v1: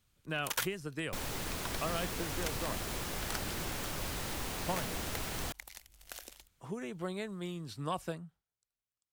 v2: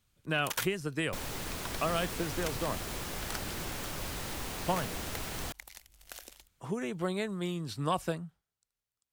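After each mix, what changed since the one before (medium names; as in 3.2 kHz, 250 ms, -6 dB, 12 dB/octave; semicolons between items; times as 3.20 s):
speech +5.5 dB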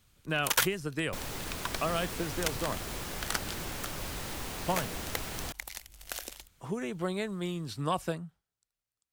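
first sound +8.0 dB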